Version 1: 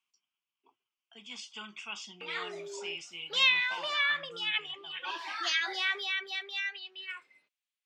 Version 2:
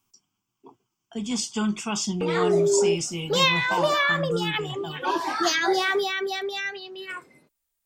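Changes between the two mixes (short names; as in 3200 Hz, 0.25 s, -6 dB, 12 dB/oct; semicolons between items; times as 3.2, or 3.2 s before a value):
speech: add high shelf 2900 Hz +8 dB; master: remove band-pass 2700 Hz, Q 2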